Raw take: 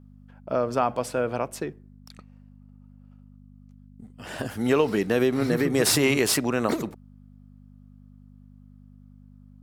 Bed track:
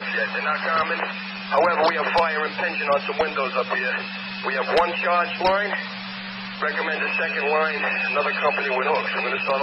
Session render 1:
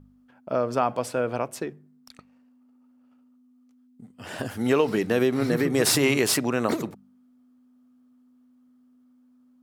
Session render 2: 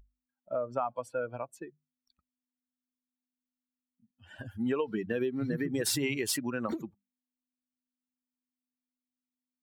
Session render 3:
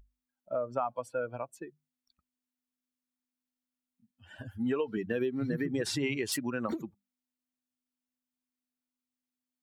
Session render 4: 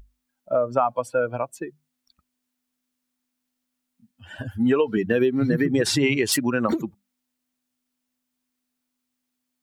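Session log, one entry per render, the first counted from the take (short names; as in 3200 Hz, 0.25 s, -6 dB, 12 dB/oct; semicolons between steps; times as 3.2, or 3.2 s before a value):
de-hum 50 Hz, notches 4
per-bin expansion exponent 2; compressor 3:1, threshold -29 dBFS, peak gain reduction 8 dB
4.39–4.97 notch comb 180 Hz; 5.72–6.32 air absorption 74 m
gain +11 dB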